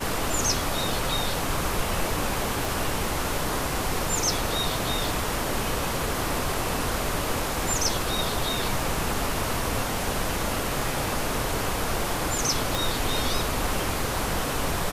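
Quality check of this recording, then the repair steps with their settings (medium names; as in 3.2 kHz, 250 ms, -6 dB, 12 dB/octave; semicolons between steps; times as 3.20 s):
2.65 s: pop
12.75 s: pop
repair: de-click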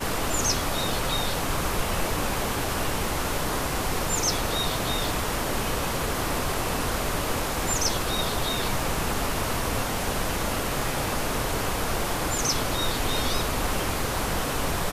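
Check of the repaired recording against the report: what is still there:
12.75 s: pop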